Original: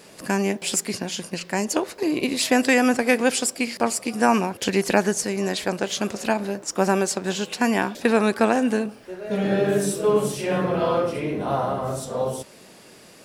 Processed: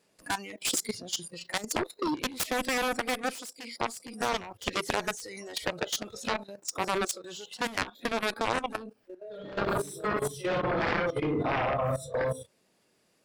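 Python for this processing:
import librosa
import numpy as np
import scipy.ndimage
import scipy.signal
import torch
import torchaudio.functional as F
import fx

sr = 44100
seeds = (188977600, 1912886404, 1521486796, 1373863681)

y = fx.noise_reduce_blind(x, sr, reduce_db=19)
y = fx.cheby_harmonics(y, sr, harmonics=(7,), levels_db=(-11,), full_scale_db=-5.5)
y = fx.rider(y, sr, range_db=4, speed_s=2.0)
y = fx.highpass(y, sr, hz=240.0, slope=12, at=(3.33, 3.81))
y = fx.level_steps(y, sr, step_db=14)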